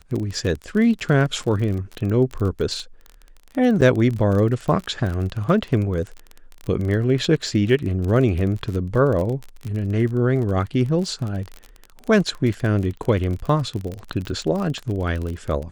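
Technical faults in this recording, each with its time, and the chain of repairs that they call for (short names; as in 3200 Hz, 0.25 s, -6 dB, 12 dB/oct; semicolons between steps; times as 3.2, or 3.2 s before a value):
crackle 31/s -26 dBFS
3.81–3.82 gap 7.4 ms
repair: de-click; interpolate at 3.81, 7.4 ms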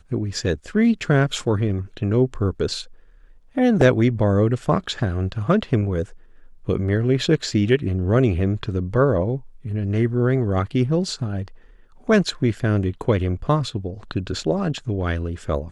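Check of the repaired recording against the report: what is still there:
none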